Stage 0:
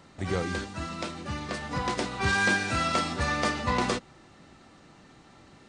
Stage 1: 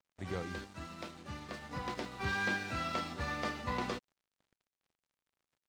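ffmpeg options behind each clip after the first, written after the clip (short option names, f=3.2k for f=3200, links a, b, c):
-filter_complex "[0:a]acrossover=split=5600[a][b];[b]acompressor=threshold=-53dB:ratio=4:attack=1:release=60[c];[a][c]amix=inputs=2:normalize=0,aeval=exprs='sgn(val(0))*max(abs(val(0))-0.00473,0)':c=same,volume=-9dB"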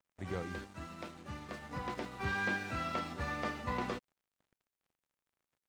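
-filter_complex "[0:a]equalizer=f=4.4k:w=1.1:g=-4.5,acrossover=split=4900[a][b];[b]alimiter=level_in=26.5dB:limit=-24dB:level=0:latency=1,volume=-26.5dB[c];[a][c]amix=inputs=2:normalize=0"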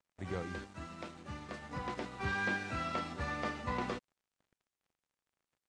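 -af "lowpass=f=9.4k:w=0.5412,lowpass=f=9.4k:w=1.3066"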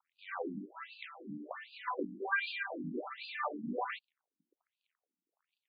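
-af "afftfilt=real='re*between(b*sr/1024,230*pow(3500/230,0.5+0.5*sin(2*PI*1.3*pts/sr))/1.41,230*pow(3500/230,0.5+0.5*sin(2*PI*1.3*pts/sr))*1.41)':imag='im*between(b*sr/1024,230*pow(3500/230,0.5+0.5*sin(2*PI*1.3*pts/sr))/1.41,230*pow(3500/230,0.5+0.5*sin(2*PI*1.3*pts/sr))*1.41)':win_size=1024:overlap=0.75,volume=7.5dB"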